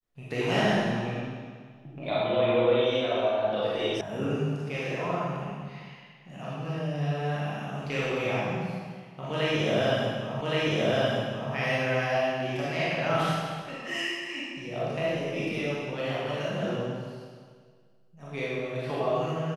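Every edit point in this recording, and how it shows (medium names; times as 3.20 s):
4.01 s: sound stops dead
10.41 s: repeat of the last 1.12 s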